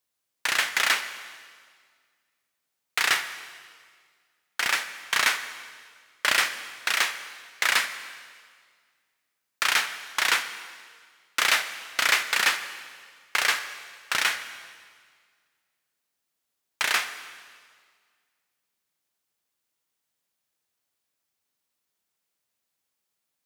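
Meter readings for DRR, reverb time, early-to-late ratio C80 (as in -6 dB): 10.0 dB, 1.8 s, 12.0 dB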